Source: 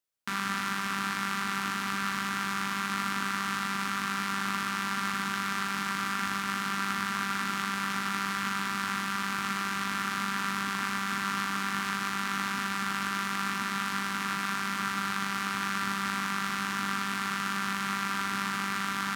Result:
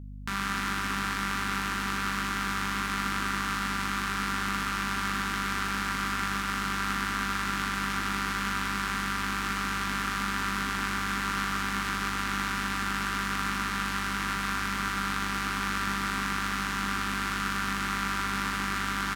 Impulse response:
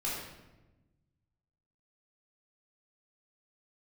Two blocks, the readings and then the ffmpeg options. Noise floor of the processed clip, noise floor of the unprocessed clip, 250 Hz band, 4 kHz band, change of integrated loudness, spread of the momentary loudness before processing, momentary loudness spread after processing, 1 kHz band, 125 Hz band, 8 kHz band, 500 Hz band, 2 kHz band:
-32 dBFS, -33 dBFS, +1.0 dB, +1.0 dB, +1.0 dB, 1 LU, 1 LU, +0.5 dB, +3.5 dB, +1.0 dB, +2.5 dB, +1.0 dB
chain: -filter_complex "[0:a]asplit=7[a][b][c][d][e][f][g];[b]adelay=131,afreqshift=69,volume=-8dB[h];[c]adelay=262,afreqshift=138,volume=-14.2dB[i];[d]adelay=393,afreqshift=207,volume=-20.4dB[j];[e]adelay=524,afreqshift=276,volume=-26.6dB[k];[f]adelay=655,afreqshift=345,volume=-32.8dB[l];[g]adelay=786,afreqshift=414,volume=-39dB[m];[a][h][i][j][k][l][m]amix=inputs=7:normalize=0,aeval=exprs='val(0)+0.01*(sin(2*PI*50*n/s)+sin(2*PI*2*50*n/s)/2+sin(2*PI*3*50*n/s)/3+sin(2*PI*4*50*n/s)/4+sin(2*PI*5*50*n/s)/5)':c=same"

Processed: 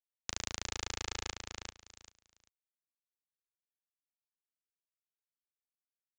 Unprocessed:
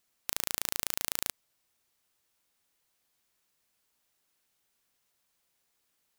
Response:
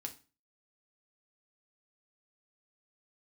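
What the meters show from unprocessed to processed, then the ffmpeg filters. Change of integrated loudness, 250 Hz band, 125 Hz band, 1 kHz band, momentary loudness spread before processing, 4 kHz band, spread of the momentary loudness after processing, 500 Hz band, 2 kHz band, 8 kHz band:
-7.0 dB, 0.0 dB, +5.0 dB, -0.5 dB, 5 LU, -1.0 dB, 19 LU, 0.0 dB, -1.0 dB, -4.5 dB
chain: -af "highpass=57,aresample=16000,asoftclip=type=tanh:threshold=-23.5dB,aresample=44100,acrusher=bits=10:mix=0:aa=0.000001,aecho=1:1:392|784|1176:0.596|0.107|0.0193,adynamicequalizer=threshold=0.001:dfrequency=4400:dqfactor=0.7:tfrequency=4400:tqfactor=0.7:attack=5:release=100:ratio=0.375:range=4:mode=cutabove:tftype=highshelf,volume=7.5dB"

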